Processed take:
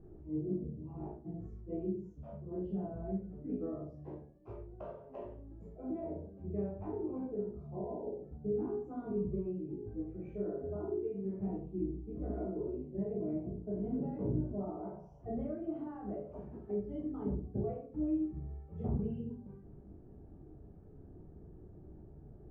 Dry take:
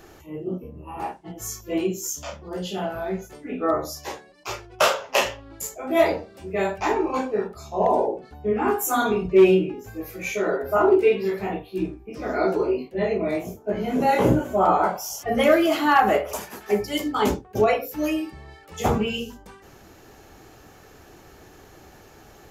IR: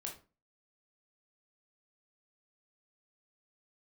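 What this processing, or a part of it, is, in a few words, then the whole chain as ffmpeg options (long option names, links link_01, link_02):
television next door: -filter_complex "[0:a]acompressor=threshold=-26dB:ratio=6,lowpass=250[link_01];[1:a]atrim=start_sample=2205[link_02];[link_01][link_02]afir=irnorm=-1:irlink=0,volume=2.5dB"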